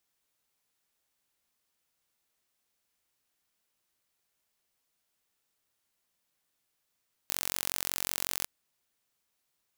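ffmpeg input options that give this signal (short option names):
-f lavfi -i "aevalsrc='0.596*eq(mod(n,971),0)':d=1.15:s=44100"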